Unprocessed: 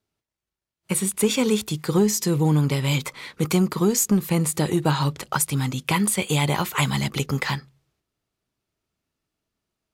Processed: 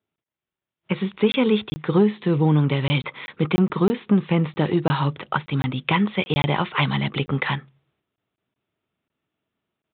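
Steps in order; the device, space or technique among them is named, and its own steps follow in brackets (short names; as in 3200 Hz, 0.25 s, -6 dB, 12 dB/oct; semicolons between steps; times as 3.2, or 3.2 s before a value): call with lost packets (HPF 110 Hz 12 dB/oct; downsampling 8000 Hz; AGC gain up to 4 dB; packet loss packets of 20 ms random); gain -1.5 dB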